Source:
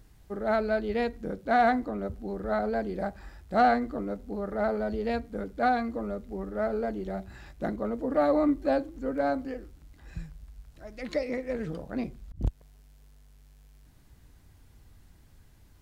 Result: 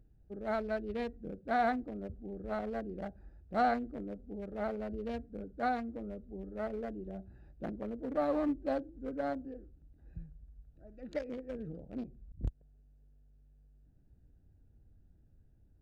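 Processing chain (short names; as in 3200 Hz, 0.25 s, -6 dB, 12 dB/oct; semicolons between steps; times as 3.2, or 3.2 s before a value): Wiener smoothing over 41 samples; 10.89–11.31 bell 1700 Hz +4.5 dB 1.6 oct; 12.03–12.43 compressor, threshold -37 dBFS, peak gain reduction 5 dB; gain -7 dB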